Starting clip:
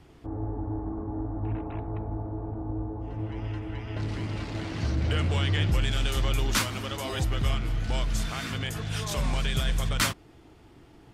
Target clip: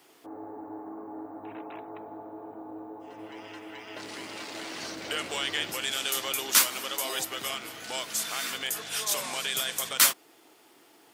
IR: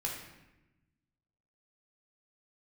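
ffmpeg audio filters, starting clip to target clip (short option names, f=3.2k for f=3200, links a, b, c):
-af "highpass=320,aemphasis=mode=production:type=bsi"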